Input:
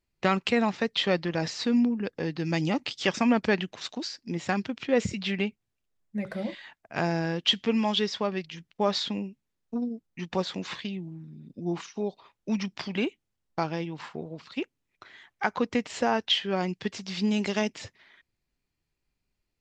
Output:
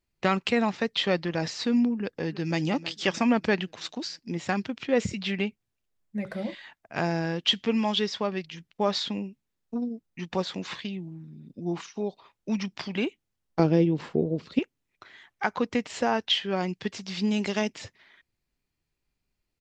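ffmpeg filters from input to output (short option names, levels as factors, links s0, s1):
-filter_complex "[0:a]asplit=2[s0][s1];[s1]afade=t=in:st=1.99:d=0.01,afade=t=out:st=2.59:d=0.01,aecho=0:1:320|640|960|1280|1600:0.177828|0.088914|0.044457|0.0222285|0.0111142[s2];[s0][s2]amix=inputs=2:normalize=0,asettb=1/sr,asplit=3[s3][s4][s5];[s3]atrim=end=13.594[s6];[s4]atrim=start=13.59:end=14.59,asetpts=PTS-STARTPTS,afade=t=in:d=0.004:c=qsin,afade=t=out:st=0.996:d=0.004:c=qsin,lowshelf=f=640:t=q:w=1.5:g=10.5[s7];[s5]atrim=start=14.586[s8];[s6][s7]acrossfade=d=0.004:c1=hsin:c2=qsin[s9];[s9][s8]acrossfade=d=0.004:c1=qsin:c2=hsin"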